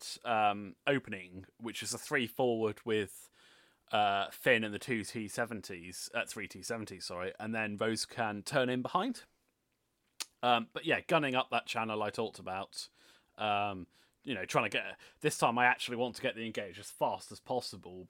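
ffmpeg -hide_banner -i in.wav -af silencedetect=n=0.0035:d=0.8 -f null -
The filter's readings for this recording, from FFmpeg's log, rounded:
silence_start: 9.24
silence_end: 10.20 | silence_duration: 0.96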